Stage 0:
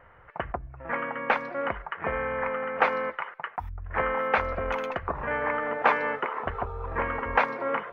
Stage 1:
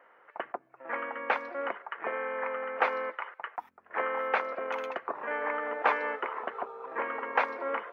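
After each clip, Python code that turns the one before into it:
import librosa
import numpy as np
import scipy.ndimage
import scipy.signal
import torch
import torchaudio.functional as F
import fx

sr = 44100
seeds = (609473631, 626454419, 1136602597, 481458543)

y = scipy.signal.sosfilt(scipy.signal.butter(4, 280.0, 'highpass', fs=sr, output='sos'), x)
y = y * librosa.db_to_amplitude(-4.0)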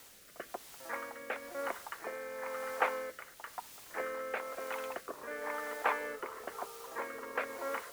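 y = fx.quant_dither(x, sr, seeds[0], bits=8, dither='triangular')
y = fx.rotary(y, sr, hz=1.0)
y = y * librosa.db_to_amplitude(-3.5)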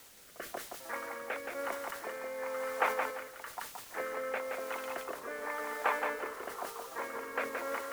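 y = fx.echo_feedback(x, sr, ms=172, feedback_pct=27, wet_db=-5)
y = fx.sustainer(y, sr, db_per_s=100.0)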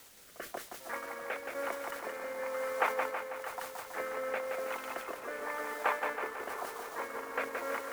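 y = fx.transient(x, sr, attack_db=0, sustain_db=-5)
y = fx.echo_wet_lowpass(y, sr, ms=323, feedback_pct=65, hz=3900.0, wet_db=-10.0)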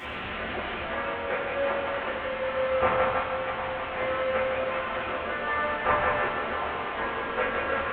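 y = fx.delta_mod(x, sr, bps=16000, step_db=-35.5)
y = fx.rev_fdn(y, sr, rt60_s=1.1, lf_ratio=1.35, hf_ratio=0.95, size_ms=79.0, drr_db=-8.0)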